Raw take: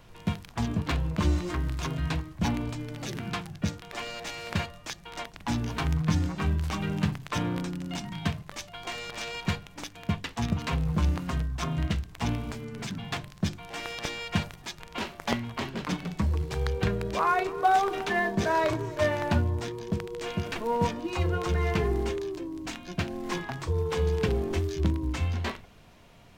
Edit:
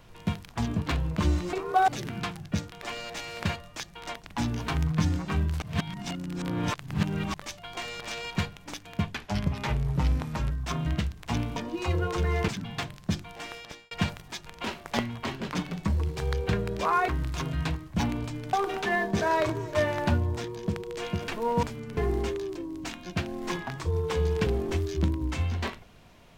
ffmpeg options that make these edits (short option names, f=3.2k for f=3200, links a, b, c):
-filter_complex "[0:a]asplit=14[a][b][c][d][e][f][g][h][i][j][k][l][m][n];[a]atrim=end=1.532[o];[b]atrim=start=17.418:end=17.772[p];[c]atrim=start=2.978:end=6.722[q];[d]atrim=start=6.718:end=8.442,asetpts=PTS-STARTPTS,areverse[r];[e]atrim=start=8.438:end=10.224[s];[f]atrim=start=10.22:end=11.43,asetpts=PTS-STARTPTS,asetrate=38367,aresample=44100,atrim=end_sample=61334,asetpts=PTS-STARTPTS[t];[g]atrim=start=11.426:end=12.482[u];[h]atrim=start=20.868:end=21.792[v];[i]atrim=start=12.818:end=14.25,asetpts=PTS-STARTPTS,afade=t=out:st=0.792:d=0.64[w];[j]atrim=start=14.25:end=17.422,asetpts=PTS-STARTPTS,afade=t=in:d=0.004:c=hsin[x];[k]atrim=start=1.528:end=2.982[y];[l]atrim=start=17.768:end=20.872[z];[m]atrim=start=12.478:end=12.822[aa];[n]atrim=start=21.788[ab];[o][p]acrossfade=d=0.004:c1=hsin:c2=hsin[ac];[ac][q]acrossfade=d=0.004:c1=hsin:c2=hsin[ad];[ad][r]acrossfade=d=0.004:c1=hsin:c2=hsin[ae];[ae][s]acrossfade=d=0.004:c1=hsin:c2=hsin[af];[af][t]acrossfade=d=0.004:c1=hsin:c2=hsin[ag];[ag][u]acrossfade=d=0.004:c1=hsin:c2=hsin[ah];[ah][v]acrossfade=d=0.004:c1=hsin:c2=hsin[ai];[w][x]concat=n=2:v=0:a=1[aj];[ai][aj]acrossfade=d=0.004:c1=hsin:c2=hsin[ak];[ak][y]acrossfade=d=0.004:c1=hsin:c2=hsin[al];[al][z]acrossfade=d=0.004:c1=hsin:c2=hsin[am];[am][aa]acrossfade=d=0.004:c1=hsin:c2=hsin[an];[an][ab]acrossfade=d=0.004:c1=hsin:c2=hsin"